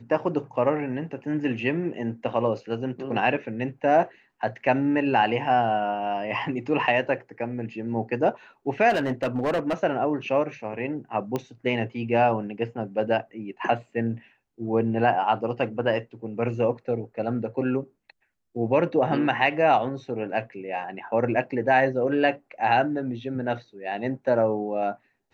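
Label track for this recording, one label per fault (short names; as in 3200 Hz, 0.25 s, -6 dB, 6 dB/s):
8.890000	9.740000	clipped -20 dBFS
11.360000	11.360000	pop -15 dBFS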